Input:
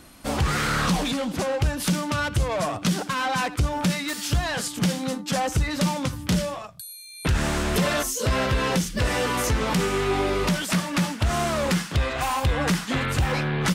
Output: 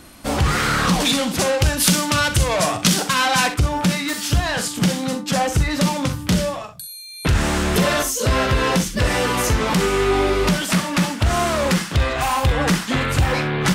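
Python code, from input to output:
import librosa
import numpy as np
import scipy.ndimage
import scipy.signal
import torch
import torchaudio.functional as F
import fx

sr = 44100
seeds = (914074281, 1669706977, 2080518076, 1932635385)

y = fx.high_shelf(x, sr, hz=2300.0, db=9.0, at=(1.0, 3.54))
y = fx.room_early_taps(y, sr, ms=(43, 64), db=(-11.5, -13.5))
y = F.gain(torch.from_numpy(y), 4.5).numpy()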